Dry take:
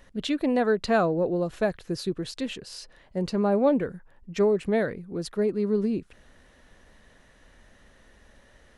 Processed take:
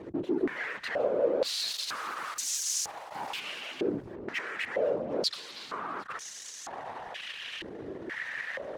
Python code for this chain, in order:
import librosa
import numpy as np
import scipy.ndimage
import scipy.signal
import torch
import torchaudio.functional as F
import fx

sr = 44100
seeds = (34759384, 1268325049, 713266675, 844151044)

y = fx.envelope_flatten(x, sr, power=0.1, at=(1.44, 3.39), fade=0.02)
y = fx.over_compress(y, sr, threshold_db=-31.0, ratio=-1.0)
y = fx.fuzz(y, sr, gain_db=52.0, gate_db=-51.0)
y = fx.whisperise(y, sr, seeds[0])
y = y + 10.0 ** (-12.0 / 20.0) * np.pad(y, (int(757 * sr / 1000.0), 0))[:len(y)]
y = fx.filter_held_bandpass(y, sr, hz=2.1, low_hz=360.0, high_hz=6400.0)
y = y * 10.0 ** (-7.5 / 20.0)